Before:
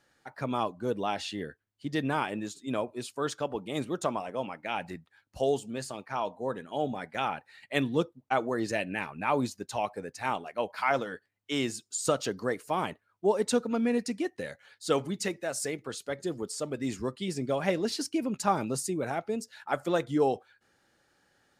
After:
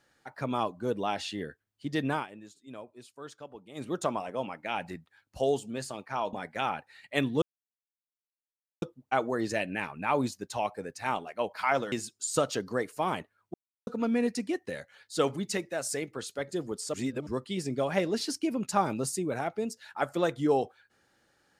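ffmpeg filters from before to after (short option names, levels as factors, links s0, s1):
-filter_complex "[0:a]asplit=10[s0][s1][s2][s3][s4][s5][s6][s7][s8][s9];[s0]atrim=end=2.27,asetpts=PTS-STARTPTS,afade=t=out:st=2.13:d=0.14:silence=0.223872[s10];[s1]atrim=start=2.27:end=3.75,asetpts=PTS-STARTPTS,volume=0.224[s11];[s2]atrim=start=3.75:end=6.332,asetpts=PTS-STARTPTS,afade=t=in:d=0.14:silence=0.223872[s12];[s3]atrim=start=6.918:end=8.01,asetpts=PTS-STARTPTS,afade=t=out:st=1.088:d=0.004:c=hsin,apad=pad_dur=1.4[s13];[s4]atrim=start=8.01:end=11.112,asetpts=PTS-STARTPTS,afade=t=in:d=0.004:c=hsin[s14];[s5]atrim=start=11.628:end=13.25,asetpts=PTS-STARTPTS,afade=t=out:st=1.618:d=0.004:c=hsin[s15];[s6]atrim=start=13.25:end=13.58,asetpts=PTS-STARTPTS,volume=0[s16];[s7]atrim=start=13.58:end=16.652,asetpts=PTS-STARTPTS,afade=t=in:d=0.004:c=hsin[s17];[s8]atrim=start=16.648:end=16.982,asetpts=PTS-STARTPTS,areverse[s18];[s9]atrim=start=16.978[s19];[s10][s11][s12]concat=n=3:v=0:a=1[s20];[s13][s14]concat=n=2:v=0:a=1[s21];[s20][s21]acrossfade=d=0.004:c1=hsin:c2=hsin[s22];[s15][s16][s17]concat=n=3:v=0:a=1[s23];[s22][s23]acrossfade=d=0.004:c1=hsin:c2=hsin[s24];[s24][s18]acrossfade=d=0.004:c1=hsin:c2=hsin[s25];[s25][s19]acrossfade=d=0.004:c1=hsin:c2=hsin"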